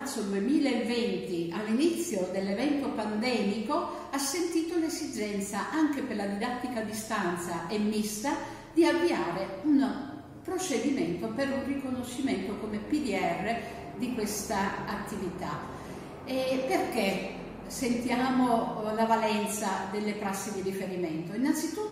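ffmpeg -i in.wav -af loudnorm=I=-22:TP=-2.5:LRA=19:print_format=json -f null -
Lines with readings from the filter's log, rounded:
"input_i" : "-30.4",
"input_tp" : "-13.0",
"input_lra" : "3.1",
"input_thresh" : "-40.6",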